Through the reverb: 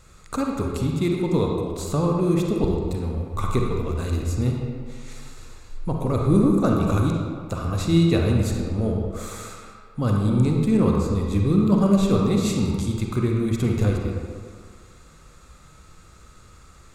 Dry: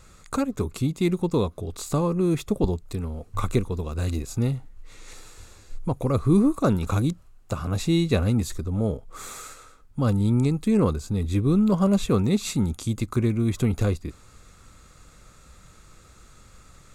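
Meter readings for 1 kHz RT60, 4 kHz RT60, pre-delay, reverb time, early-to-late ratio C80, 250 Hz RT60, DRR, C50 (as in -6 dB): 2.0 s, 1.2 s, 37 ms, 1.9 s, 2.5 dB, 1.7 s, 0.0 dB, 0.5 dB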